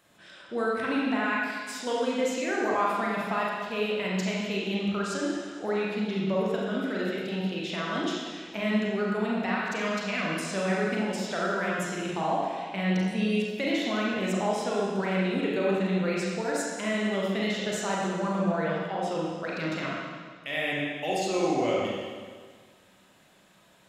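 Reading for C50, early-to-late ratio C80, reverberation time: −2.0 dB, 0.5 dB, 1.7 s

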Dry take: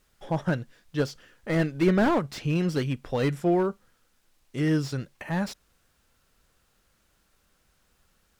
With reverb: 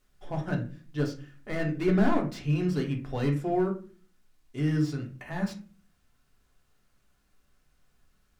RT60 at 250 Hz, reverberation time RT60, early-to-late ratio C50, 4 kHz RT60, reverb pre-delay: 0.65 s, 0.40 s, 10.5 dB, 0.25 s, 3 ms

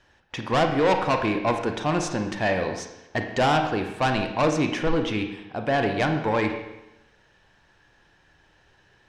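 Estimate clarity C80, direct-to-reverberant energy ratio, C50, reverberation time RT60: 9.0 dB, 5.0 dB, 6.5 dB, 0.95 s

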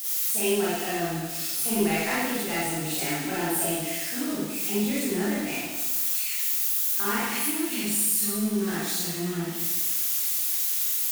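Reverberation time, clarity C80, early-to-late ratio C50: 1.2 s, 0.0 dB, −3.5 dB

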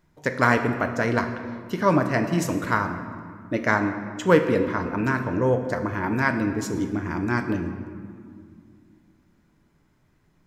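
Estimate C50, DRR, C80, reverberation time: 8.5 dB, 6.0 dB, 9.5 dB, 2.1 s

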